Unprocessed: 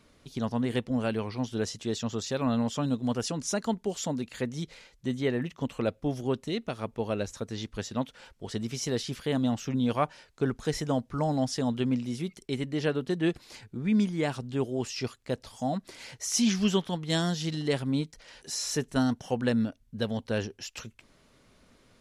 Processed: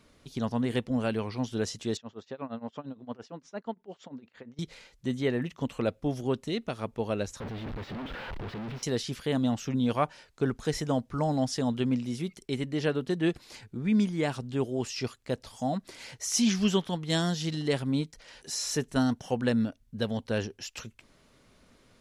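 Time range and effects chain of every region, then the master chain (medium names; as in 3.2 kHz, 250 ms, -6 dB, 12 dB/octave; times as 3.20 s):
1.97–4.59 s: high-pass 440 Hz 6 dB/octave + tape spacing loss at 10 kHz 34 dB + tremolo 8.7 Hz, depth 91%
7.40–8.83 s: one-bit comparator + distance through air 380 m
whole clip: none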